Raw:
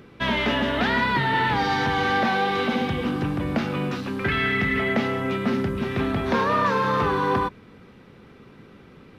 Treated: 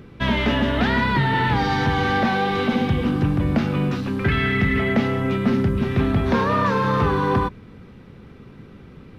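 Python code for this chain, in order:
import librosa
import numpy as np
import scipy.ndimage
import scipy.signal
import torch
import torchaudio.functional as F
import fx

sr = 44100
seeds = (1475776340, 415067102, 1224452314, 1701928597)

y = fx.low_shelf(x, sr, hz=190.0, db=11.5)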